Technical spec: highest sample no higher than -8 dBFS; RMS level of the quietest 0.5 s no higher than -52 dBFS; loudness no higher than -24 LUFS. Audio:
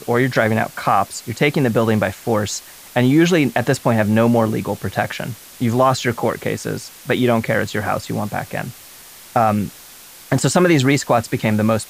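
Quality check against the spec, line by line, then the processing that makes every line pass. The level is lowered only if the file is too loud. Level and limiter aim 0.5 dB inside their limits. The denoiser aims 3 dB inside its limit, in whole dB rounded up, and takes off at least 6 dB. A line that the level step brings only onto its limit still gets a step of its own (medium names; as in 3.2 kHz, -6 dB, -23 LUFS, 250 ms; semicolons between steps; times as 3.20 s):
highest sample -3.5 dBFS: fail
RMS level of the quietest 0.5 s -41 dBFS: fail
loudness -18.5 LUFS: fail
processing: noise reduction 8 dB, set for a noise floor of -41 dBFS; trim -6 dB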